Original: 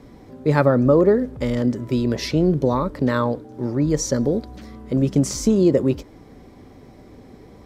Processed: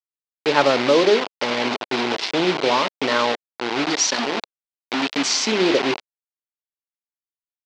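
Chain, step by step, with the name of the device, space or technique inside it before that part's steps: 3.88–5.52 ten-band EQ 125 Hz -11 dB, 250 Hz +4 dB, 500 Hz -11 dB, 1000 Hz +7 dB, 2000 Hz +5 dB, 4000 Hz +7 dB, 8000 Hz +10 dB; notches 50/100/150/200/250/300/350/400 Hz; hand-held game console (bit-crush 4-bit; speaker cabinet 480–4700 Hz, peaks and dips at 540 Hz -6 dB, 1200 Hz -5 dB, 1700 Hz -4 dB); gain +6.5 dB

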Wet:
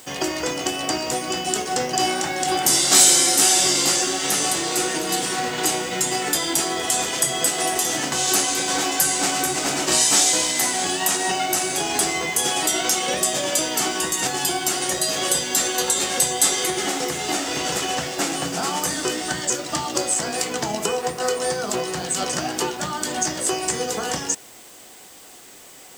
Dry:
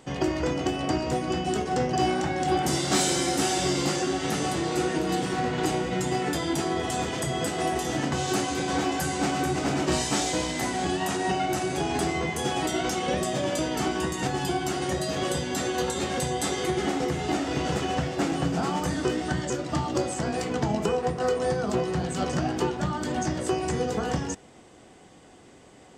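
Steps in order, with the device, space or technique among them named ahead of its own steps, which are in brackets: turntable without a phono preamp (RIAA curve recording; white noise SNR 26 dB); gain +4 dB

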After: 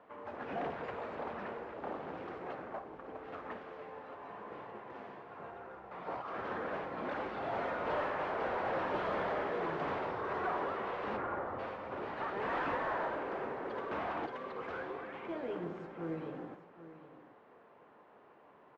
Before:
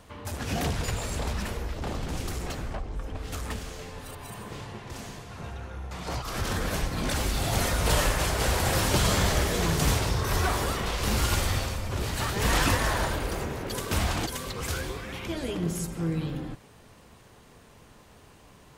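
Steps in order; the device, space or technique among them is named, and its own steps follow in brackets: carbon microphone (BPF 390–3400 Hz; soft clip -25.5 dBFS, distortion -15 dB; modulation noise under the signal 14 dB); LPF 1400 Hz 12 dB/oct; 11.16–11.58 LPF 2300 Hz -> 1300 Hz 24 dB/oct; tapped delay 56/782 ms -12.5/-13.5 dB; gain -2 dB

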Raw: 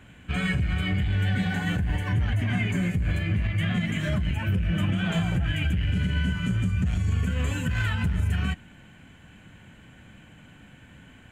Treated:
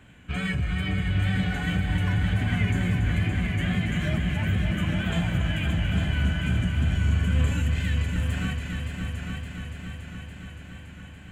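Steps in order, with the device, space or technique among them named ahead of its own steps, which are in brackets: 7.62–8.16 elliptic high-pass 1800 Hz; multi-head tape echo (multi-head echo 0.284 s, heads all three, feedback 66%, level -9 dB; wow and flutter 24 cents); gain -2 dB

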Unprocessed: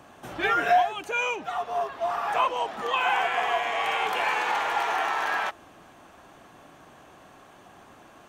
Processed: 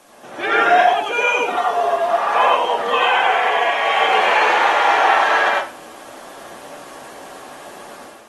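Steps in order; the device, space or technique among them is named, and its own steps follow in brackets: filmed off a television (BPF 250–6700 Hz; bell 550 Hz +4.5 dB 0.3 oct; reverb RT60 0.35 s, pre-delay 83 ms, DRR -2.5 dB; white noise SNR 29 dB; AGC gain up to 9 dB; gain -1 dB; AAC 32 kbps 48000 Hz)

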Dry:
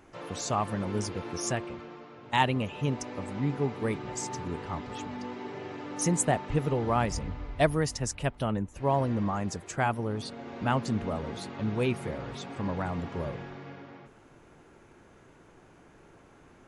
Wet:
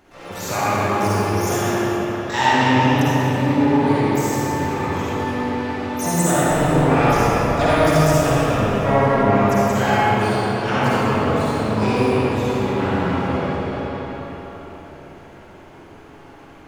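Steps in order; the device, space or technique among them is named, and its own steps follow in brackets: notches 60/120/180/240/300 Hz; shimmer-style reverb (harmoniser +12 st -6 dB; reverb RT60 3.3 s, pre-delay 44 ms, DRR -8.5 dB); spring tank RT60 3.3 s, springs 39/45/57 ms, chirp 65 ms, DRR 0.5 dB

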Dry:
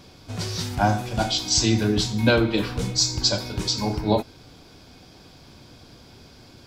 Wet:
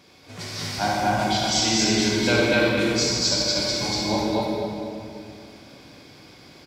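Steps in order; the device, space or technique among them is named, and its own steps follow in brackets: stadium PA (HPF 210 Hz 6 dB/oct; bell 2100 Hz +6.5 dB 0.45 oct; loudspeakers at several distances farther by 51 m -9 dB, 82 m -1 dB; reverb RT60 2.5 s, pre-delay 33 ms, DRR -2.5 dB); gain -5 dB

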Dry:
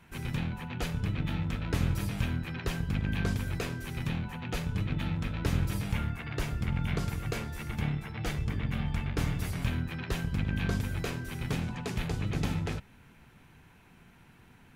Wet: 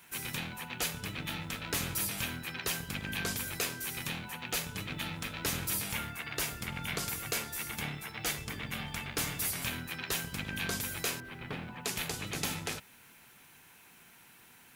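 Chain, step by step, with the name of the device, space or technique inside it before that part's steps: 11.2–11.85 air absorption 450 m; turntable without a phono preamp (RIAA curve recording; white noise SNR 34 dB)

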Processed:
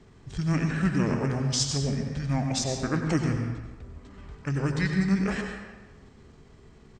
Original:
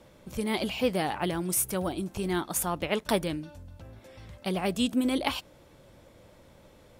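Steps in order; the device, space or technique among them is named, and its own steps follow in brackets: monster voice (pitch shift -5 st; formant shift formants -5 st; low shelf 140 Hz +4 dB; reverb RT60 1.3 s, pre-delay 83 ms, DRR 3.5 dB)

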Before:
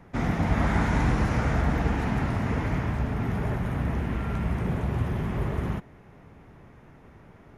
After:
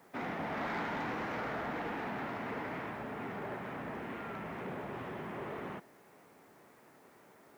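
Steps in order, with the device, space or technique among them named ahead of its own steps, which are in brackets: tape answering machine (BPF 330–3300 Hz; soft clip -26.5 dBFS, distortion -16 dB; wow and flutter; white noise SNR 31 dB); gain -4.5 dB

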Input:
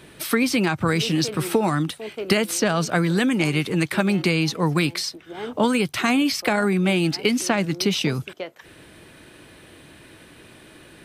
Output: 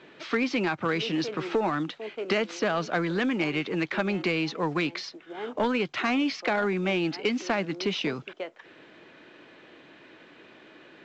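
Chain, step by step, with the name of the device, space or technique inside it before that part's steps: telephone (BPF 260–3200 Hz; soft clip -14 dBFS, distortion -19 dB; gain -2.5 dB; µ-law 128 kbps 16000 Hz)

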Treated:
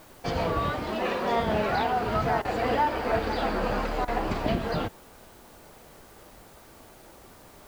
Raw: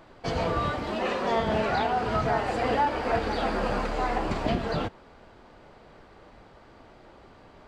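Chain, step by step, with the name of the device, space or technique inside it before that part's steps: worn cassette (LPF 7400 Hz; wow and flutter; level dips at 2.42/4.05, 27 ms -15 dB; white noise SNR 28 dB)

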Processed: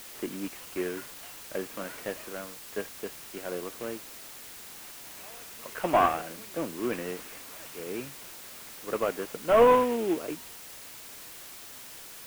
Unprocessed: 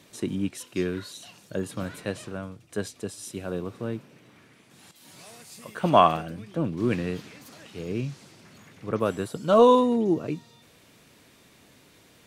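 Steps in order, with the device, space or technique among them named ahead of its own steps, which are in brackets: army field radio (BPF 370–3200 Hz; CVSD 16 kbps; white noise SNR 14 dB)

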